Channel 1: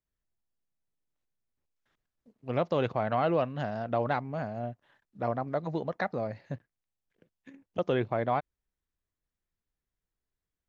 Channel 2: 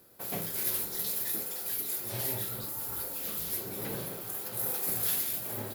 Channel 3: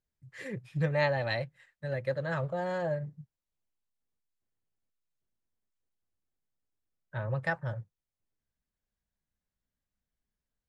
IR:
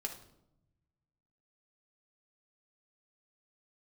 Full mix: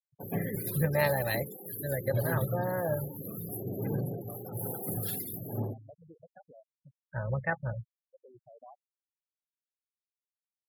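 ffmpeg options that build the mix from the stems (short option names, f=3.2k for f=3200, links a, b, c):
-filter_complex "[0:a]acompressor=threshold=-47dB:ratio=1.5,adelay=350,volume=-13dB,asplit=2[a][b];[b]volume=-22.5dB[c];[1:a]highpass=f=81:w=0.5412,highpass=f=81:w=1.3066,equalizer=f=130:t=o:w=2.7:g=12,volume=-3.5dB,asplit=2[d][e];[e]volume=-8.5dB[f];[2:a]bandreject=f=431.4:t=h:w=4,bandreject=f=862.8:t=h:w=4,bandreject=f=1.2942k:t=h:w=4,tremolo=f=64:d=0.4,volume=2dB,asplit=3[g][h][i];[h]volume=-23.5dB[j];[i]apad=whole_len=486781[k];[a][k]sidechaincompress=threshold=-44dB:ratio=5:attack=46:release=880[l];[3:a]atrim=start_sample=2205[m];[c][f][j]amix=inputs=3:normalize=0[n];[n][m]afir=irnorm=-1:irlink=0[o];[l][d][g][o]amix=inputs=4:normalize=0,afftfilt=real='re*gte(hypot(re,im),0.0158)':imag='im*gte(hypot(re,im),0.0158)':win_size=1024:overlap=0.75,highshelf=f=4.5k:g=-5"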